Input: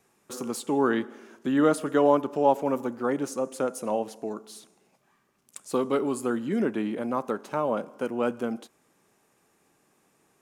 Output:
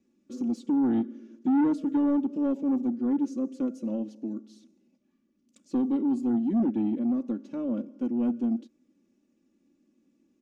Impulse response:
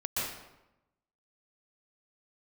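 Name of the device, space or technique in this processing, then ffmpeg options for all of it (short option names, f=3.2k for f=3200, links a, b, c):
saturation between pre-emphasis and de-emphasis: -af "firequalizer=gain_entry='entry(100,0);entry(240,12);entry(420,0);entry(830,-17);entry(2600,-8);entry(6100,-7);entry(9500,-23)':delay=0.05:min_phase=1,highshelf=f=3.4k:g=10,aecho=1:1:3.5:0.77,asoftclip=type=tanh:threshold=-12.5dB,highshelf=f=3.4k:g=-10,volume=-7dB"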